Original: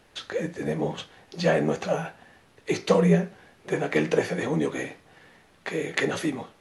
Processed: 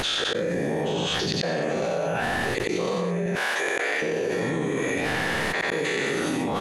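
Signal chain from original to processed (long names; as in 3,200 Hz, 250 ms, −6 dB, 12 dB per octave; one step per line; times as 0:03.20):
every bin's largest magnitude spread in time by 240 ms
0:03.26–0:04.02: high-pass filter 830 Hz 12 dB per octave
gate with flip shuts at −17 dBFS, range −38 dB
single-tap delay 91 ms −4.5 dB
envelope flattener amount 100%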